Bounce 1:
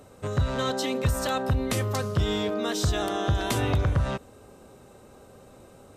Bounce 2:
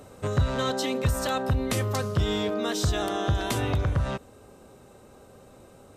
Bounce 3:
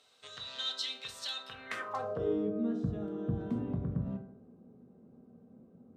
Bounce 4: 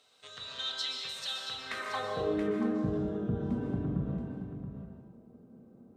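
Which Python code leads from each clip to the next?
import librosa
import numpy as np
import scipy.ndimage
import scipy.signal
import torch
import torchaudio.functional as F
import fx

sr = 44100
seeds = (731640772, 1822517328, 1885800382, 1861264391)

y1 = fx.rider(x, sr, range_db=10, speed_s=0.5)
y2 = fx.rev_fdn(y1, sr, rt60_s=0.71, lf_ratio=1.0, hf_ratio=0.45, size_ms=13.0, drr_db=2.5)
y2 = fx.filter_sweep_bandpass(y2, sr, from_hz=3800.0, to_hz=210.0, start_s=1.44, end_s=2.51, q=2.9)
y3 = y2 + 10.0 ** (-9.0 / 20.0) * np.pad(y2, (int(677 * sr / 1000.0), 0))[:len(y2)]
y3 = fx.rev_plate(y3, sr, seeds[0], rt60_s=1.1, hf_ratio=0.9, predelay_ms=110, drr_db=2.0)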